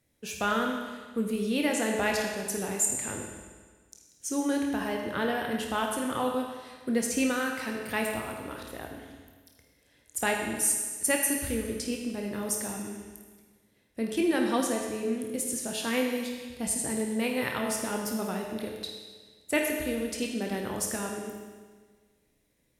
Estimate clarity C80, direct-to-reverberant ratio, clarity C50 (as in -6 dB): 4.5 dB, 0.5 dB, 3.0 dB